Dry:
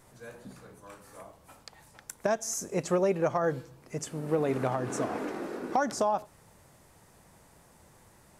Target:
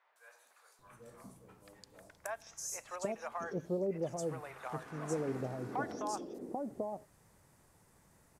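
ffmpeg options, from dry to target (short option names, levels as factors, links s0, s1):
-filter_complex "[0:a]acrossover=split=700|3300[s0][s1][s2];[s2]adelay=160[s3];[s0]adelay=790[s4];[s4][s1][s3]amix=inputs=3:normalize=0,volume=0.447"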